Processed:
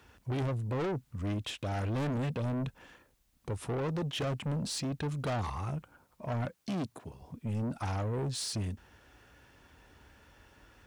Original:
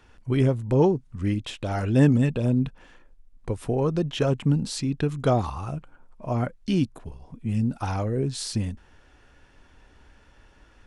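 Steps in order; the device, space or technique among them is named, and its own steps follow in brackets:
high-pass filter 43 Hz 24 dB per octave
open-reel tape (soft clipping −28.5 dBFS, distortion −5 dB; parametric band 110 Hz +3.5 dB 1.06 octaves; white noise bed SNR 43 dB)
0:06.45–0:07.22: high-pass filter 110 Hz
low-shelf EQ 200 Hz −3.5 dB
level −1.5 dB

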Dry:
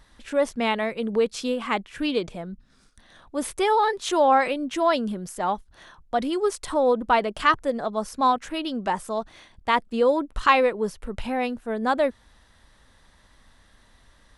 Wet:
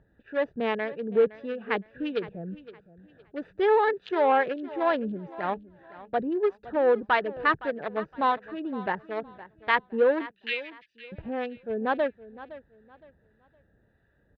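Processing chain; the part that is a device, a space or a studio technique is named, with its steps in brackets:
adaptive Wiener filter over 41 samples
0:10.31–0:11.12: Butterworth high-pass 2,200 Hz 48 dB per octave
guitar amplifier with harmonic tremolo (two-band tremolo in antiphase 1.6 Hz, depth 50%, crossover 890 Hz; soft clipping −15 dBFS, distortion −19 dB; loudspeaker in its box 78–3,500 Hz, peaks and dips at 150 Hz +4 dB, 240 Hz −5 dB, 430 Hz +5 dB, 1,700 Hz +9 dB)
high-shelf EQ 4,200 Hz +5 dB
repeating echo 514 ms, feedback 28%, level −17 dB

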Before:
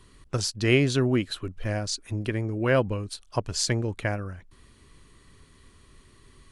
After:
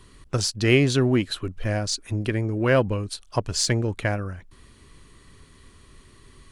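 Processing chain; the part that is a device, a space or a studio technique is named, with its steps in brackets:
parallel distortion (in parallel at −13 dB: hard clipping −25.5 dBFS, distortion −6 dB)
on the sum: level +2 dB

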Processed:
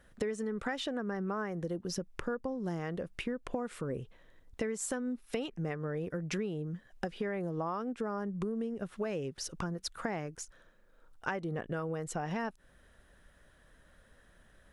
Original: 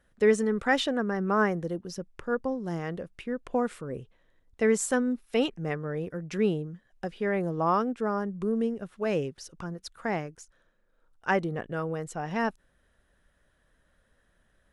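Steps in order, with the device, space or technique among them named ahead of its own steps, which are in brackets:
serial compression, leveller first (downward compressor 2 to 1, threshold −29 dBFS, peak gain reduction 7 dB; downward compressor 6 to 1, threshold −39 dBFS, peak gain reduction 14.5 dB)
level +6 dB

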